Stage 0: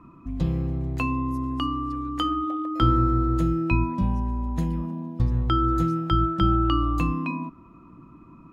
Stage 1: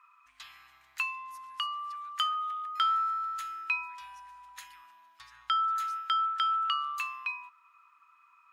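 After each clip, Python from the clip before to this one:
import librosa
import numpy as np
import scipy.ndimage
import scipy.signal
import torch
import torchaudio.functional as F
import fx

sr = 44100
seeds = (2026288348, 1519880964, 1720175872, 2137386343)

y = scipy.signal.sosfilt(scipy.signal.cheby2(4, 50, 510.0, 'highpass', fs=sr, output='sos'), x)
y = y * 10.0 ** (1.5 / 20.0)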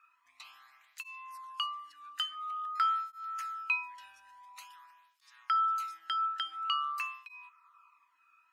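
y = fx.flanger_cancel(x, sr, hz=0.48, depth_ms=1.0)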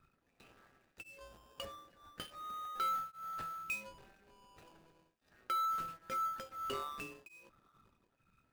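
y = scipy.ndimage.median_filter(x, 41, mode='constant')
y = np.clip(y, -10.0 ** (-36.5 / 20.0), 10.0 ** (-36.5 / 20.0))
y = y * 10.0 ** (4.5 / 20.0)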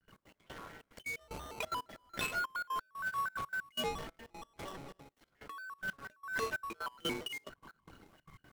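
y = fx.over_compress(x, sr, threshold_db=-48.0, ratio=-1.0)
y = fx.step_gate(y, sr, bpm=183, pattern='.x.x..xxxx', floor_db=-24.0, edge_ms=4.5)
y = fx.vibrato_shape(y, sr, shape='square', rate_hz=4.3, depth_cents=250.0)
y = y * 10.0 ** (10.0 / 20.0)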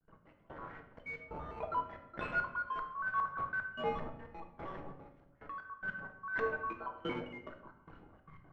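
y = fx.comb_fb(x, sr, f0_hz=81.0, decay_s=1.7, harmonics='odd', damping=0.0, mix_pct=60)
y = fx.filter_lfo_lowpass(y, sr, shape='saw_up', hz=2.5, low_hz=820.0, high_hz=2000.0, q=1.2)
y = fx.room_shoebox(y, sr, seeds[0], volume_m3=220.0, walls='mixed', distance_m=0.64)
y = y * 10.0 ** (6.5 / 20.0)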